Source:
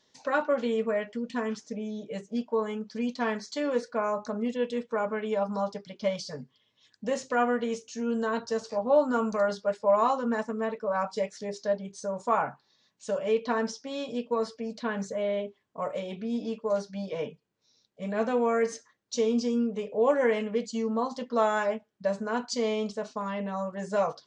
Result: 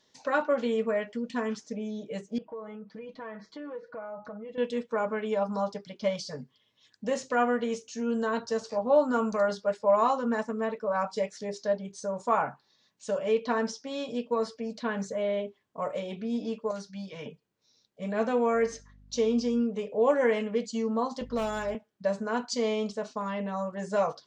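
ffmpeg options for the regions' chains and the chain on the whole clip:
-filter_complex "[0:a]asettb=1/sr,asplit=3[a][b][c];[a]atrim=end=2.384[d];[b]atrim=start=2.38:end=4.58,asetpts=PTS-STARTPTS,afade=t=in:d=0.004:c=qsin,afade=t=out:st=2.196:d=0.004:c=qsin,lowpass=1.8k,aecho=1:1:6.2:0.81,atrim=end_sample=97020,acompressor=threshold=-41dB:ratio=3:attack=3.2:release=140:knee=1:detection=peak[e];[c]atrim=start=4.576[f];[d][e]acrossfade=d=0.004:c1=hsin:c2=qsin[g];[g][f]acrossfade=d=0.004:c1=qsin:c2=hsin,asettb=1/sr,asplit=3[h][i][j];[h]atrim=end=16.714[k];[i]atrim=start=16.71:end=17.26,asetpts=PTS-STARTPTS,afade=t=in:d=0.004:c=qsin,afade=t=out:st=0.546:d=0.004:c=qsin,highpass=51,equalizer=f=560:w=0.73:g=-12[l];[j]atrim=start=17.256[m];[k][l]acrossfade=d=0.004:c1=hsin:c2=qsin[n];[n][m]acrossfade=d=0.004:c1=qsin:c2=hsin,asettb=1/sr,asplit=3[o][p][q];[o]atrim=end=18.544[r];[p]atrim=start=18.54:end=19.61,asetpts=PTS-STARTPTS,afade=t=in:d=0.004:c=qsin,afade=t=out:st=1.066:d=0.004:c=qsin,lowpass=6.9k,aeval=exprs='val(0)+0.002*(sin(2*PI*50*n/s)+sin(2*PI*2*50*n/s)/2+sin(2*PI*3*50*n/s)/3+sin(2*PI*4*50*n/s)/4+sin(2*PI*5*50*n/s)/5)':c=same[s];[q]atrim=start=19.606[t];[r][s]acrossfade=d=0.004:c1=hsin:c2=qsin[u];[u][t]acrossfade=d=0.004:c1=qsin:c2=hsin,asettb=1/sr,asplit=3[v][w][x];[v]atrim=end=21.214[y];[w]atrim=start=21.21:end=21.75,asetpts=PTS-STARTPTS,afade=t=in:d=0.004:c=qsin,afade=t=out:st=0.536:d=0.004:c=qsin,asoftclip=type=hard:threshold=-19.5dB,acrossover=split=470|3000[z][aa][ab];[aa]acompressor=threshold=-38dB:ratio=2:attack=3.2:release=140:knee=2.83:detection=peak[ac];[z][ac][ab]amix=inputs=3:normalize=0,aeval=exprs='val(0)+0.00501*(sin(2*PI*50*n/s)+sin(2*PI*2*50*n/s)/2+sin(2*PI*3*50*n/s)/3+sin(2*PI*4*50*n/s)/4+sin(2*PI*5*50*n/s)/5)':c=same[ad];[x]atrim=start=21.746[ae];[y][ad]acrossfade=d=0.004:c1=hsin:c2=qsin[af];[af][ae]acrossfade=d=0.004:c1=qsin:c2=hsin"

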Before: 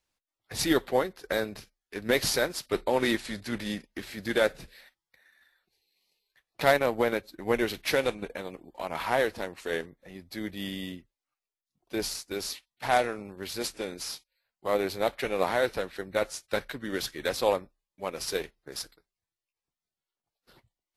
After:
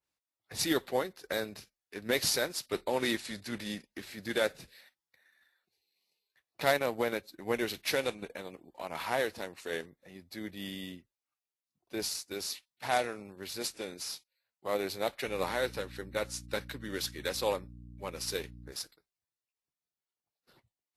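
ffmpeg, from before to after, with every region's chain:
-filter_complex "[0:a]asettb=1/sr,asplit=3[a][b][c];[a]atrim=end=15.274[d];[b]atrim=start=15.27:end=18.72,asetpts=PTS-STARTPTS,afade=t=in:d=0.004:c=qsin,afade=t=out:st=3.446:d=0.004:c=qsin,bandreject=f=680:w=7,aeval=exprs='val(0)+0.01*(sin(2*PI*60*n/s)+sin(2*PI*2*60*n/s)/2+sin(2*PI*3*60*n/s)/3+sin(2*PI*4*60*n/s)/4+sin(2*PI*5*60*n/s)/5)':c=same[e];[c]atrim=start=18.716[f];[d][e]acrossfade=d=0.004:c1=hsin:c2=qsin[g];[g][f]acrossfade=d=0.004:c1=qsin:c2=hsin,highpass=64,bandreject=f=3.2k:w=28,adynamicequalizer=threshold=0.00891:dfrequency=2600:dqfactor=0.7:tfrequency=2600:tqfactor=0.7:attack=5:release=100:ratio=0.375:range=2.5:mode=boostabove:tftype=highshelf,volume=-5.5dB"

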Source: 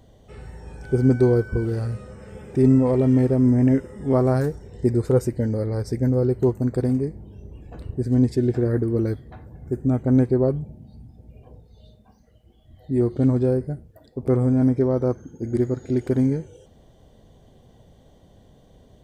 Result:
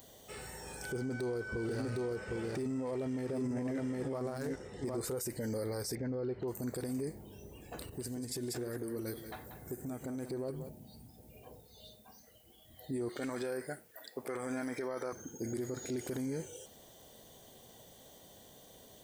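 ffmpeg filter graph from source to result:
-filter_complex "[0:a]asettb=1/sr,asplit=3[a][b][c];[a]atrim=end=0.924[d];[b]atrim=start=0.92:end=5.01,asetpts=PTS-STARTPTS,afade=t=in:d=0.004:c=qsin,afade=t=out:st=4.086:d=0.004:c=qsin,adynamicsmooth=sensitivity=7:basefreq=4.4k,aecho=1:1:758:0.422,atrim=end_sample=180369[e];[c]atrim=start=5.006[f];[d][e]acrossfade=d=0.004:c1=hsin:c2=qsin[g];[g][f]acrossfade=d=0.004:c1=qsin:c2=hsin,asettb=1/sr,asplit=3[h][i][j];[h]atrim=end=5.954[k];[i]atrim=start=5.95:end=6.48,asetpts=PTS-STARTPTS,afade=t=in:d=0.004:c=qsin,afade=t=out:st=0.526:d=0.004:c=qsin,lowpass=f=3.7k:w=0.5412,lowpass=f=3.7k:w=1.3066,acompressor=threshold=-26dB:ratio=2:attack=3.2:release=140:knee=1:detection=peak[l];[j]atrim=start=6.476[m];[k][l]acrossfade=d=0.004:c1=hsin:c2=qsin[n];[n][m]acrossfade=d=0.004:c1=qsin:c2=hsin,asettb=1/sr,asplit=3[o][p][q];[o]atrim=end=7.814[r];[p]atrim=start=7.81:end=10.69,asetpts=PTS-STARTPTS,afade=t=in:d=0.004:c=qsin,afade=t=out:st=2.876:d=0.004:c=qsin,highshelf=f=5.2k:g=5,acompressor=threshold=-29dB:ratio=16:attack=3.2:release=140:knee=1:detection=peak,aecho=1:1:186:0.335,atrim=end_sample=127008[s];[q]atrim=start=10.686[t];[r][s]acrossfade=d=0.004:c1=hsin:c2=qsin[u];[u][t]acrossfade=d=0.004:c1=qsin:c2=hsin,asettb=1/sr,asplit=3[v][w][x];[v]atrim=end=13.094[y];[w]atrim=start=13.09:end=15.13,asetpts=PTS-STARTPTS,afade=t=in:d=0.004:c=qsin,afade=t=out:st=2.036:d=0.004:c=qsin,highpass=f=510:p=1,equalizer=f=1.8k:w=1.1:g=10.5[z];[x]atrim=start=15.126[aa];[y][z]acrossfade=d=0.004:c1=hsin:c2=qsin[ab];[ab][aa]acrossfade=d=0.004:c1=qsin:c2=hsin,aemphasis=mode=production:type=riaa,acompressor=threshold=-25dB:ratio=6,alimiter=level_in=5.5dB:limit=-24dB:level=0:latency=1:release=18,volume=-5.5dB"

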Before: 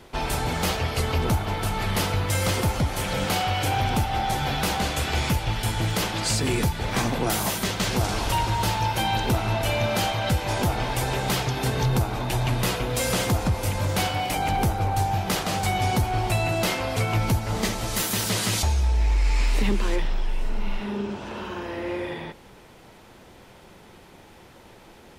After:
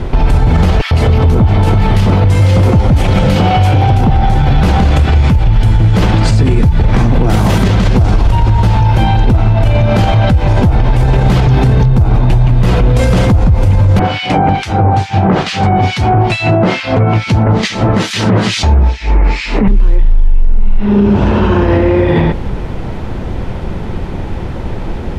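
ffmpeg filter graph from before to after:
-filter_complex "[0:a]asettb=1/sr,asplit=3[a][b][c];[a]atrim=end=0.814[d];[b]atrim=start=0.81:end=4.1,asetpts=PTS-STARTPTS,afade=t=in:d=0.004:c=qsin,afade=t=out:st=3.286:d=0.004:c=qsin,lowshelf=f=67:g=-11,acrossover=split=1500[e][f];[e]adelay=100[g];[g][f]amix=inputs=2:normalize=0,atrim=end_sample=145089[h];[c]atrim=start=4.096[i];[d][h]acrossfade=d=0.004:c1=hsin:c2=qsin[j];[j][i]acrossfade=d=0.004:c1=qsin:c2=hsin,asettb=1/sr,asplit=3[k][l][m];[k]atrim=end=13.994[n];[l]atrim=start=13.99:end=19.68,asetpts=PTS-STARTPTS,afade=t=in:d=0.004:c=qsin,afade=t=out:st=5.686:d=0.004:c=qsin,acrossover=split=1900[o][p];[o]aeval=exprs='val(0)*(1-1/2+1/2*cos(2*PI*2.3*n/s))':c=same[q];[p]aeval=exprs='val(0)*(1-1/2-1/2*cos(2*PI*2.3*n/s))':c=same[r];[q][r]amix=inputs=2:normalize=0,highpass=170,lowpass=5.9k[s];[m]atrim=start=19.676[t];[n][s]acrossfade=d=0.004:c1=hsin:c2=qsin[u];[u][t]acrossfade=d=0.004:c1=qsin:c2=hsin,aemphasis=mode=reproduction:type=riaa,acompressor=threshold=-19dB:ratio=6,alimiter=level_in=22dB:limit=-1dB:release=50:level=0:latency=1,volume=-1dB"

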